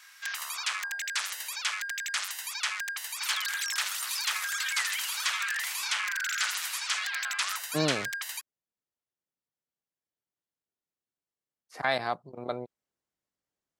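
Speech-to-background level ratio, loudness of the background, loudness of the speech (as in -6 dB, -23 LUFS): -2.0 dB, -30.5 LUFS, -32.5 LUFS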